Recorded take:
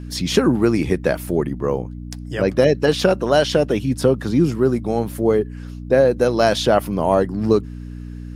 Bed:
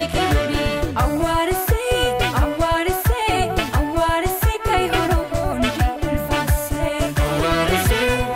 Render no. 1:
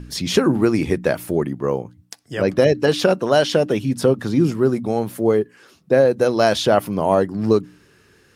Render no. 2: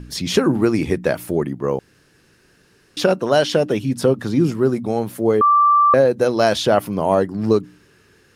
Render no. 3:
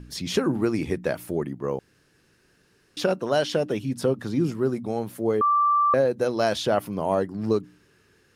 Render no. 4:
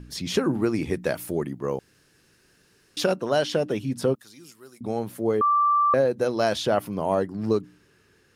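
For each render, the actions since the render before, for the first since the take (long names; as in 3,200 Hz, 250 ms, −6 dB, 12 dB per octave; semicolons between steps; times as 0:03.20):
hum removal 60 Hz, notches 5
0:01.79–0:02.97: fill with room tone; 0:05.41–0:05.94: beep over 1,170 Hz −10 dBFS
level −7 dB
0:00.93–0:03.14: high-shelf EQ 3,600 Hz +6 dB; 0:04.15–0:04.81: first-order pre-emphasis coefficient 0.97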